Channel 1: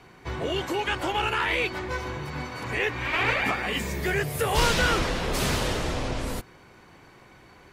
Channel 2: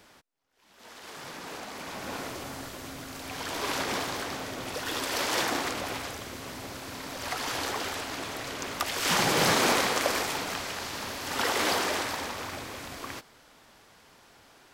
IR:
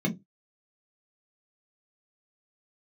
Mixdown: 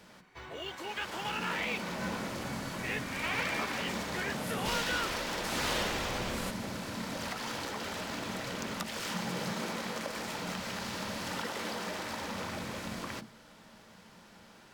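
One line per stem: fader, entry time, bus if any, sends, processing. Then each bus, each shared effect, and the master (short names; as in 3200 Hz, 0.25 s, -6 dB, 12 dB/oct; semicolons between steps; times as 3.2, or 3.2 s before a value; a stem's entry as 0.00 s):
5.49 s -8 dB -> 5.71 s -1 dB, 0.10 s, no send, low shelf 490 Hz -12 dB
+0.5 dB, 0.00 s, send -16.5 dB, notches 60/120 Hz; compressor 12:1, threshold -34 dBFS, peak gain reduction 14.5 dB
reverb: on, pre-delay 3 ms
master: decimation joined by straight lines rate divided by 2×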